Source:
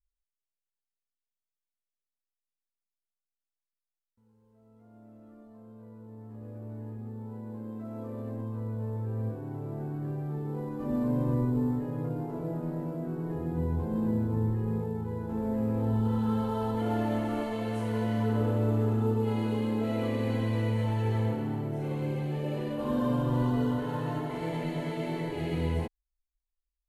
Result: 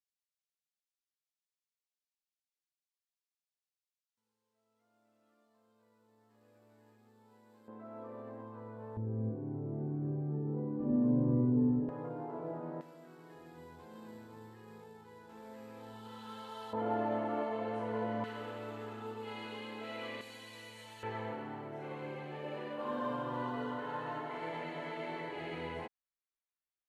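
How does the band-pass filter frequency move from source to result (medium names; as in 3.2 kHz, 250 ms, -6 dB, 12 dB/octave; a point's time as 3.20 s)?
band-pass filter, Q 0.78
4.6 kHz
from 7.68 s 1.2 kHz
from 8.97 s 250 Hz
from 11.89 s 970 Hz
from 12.81 s 4.1 kHz
from 16.73 s 810 Hz
from 18.24 s 2.6 kHz
from 20.21 s 6.5 kHz
from 21.03 s 1.4 kHz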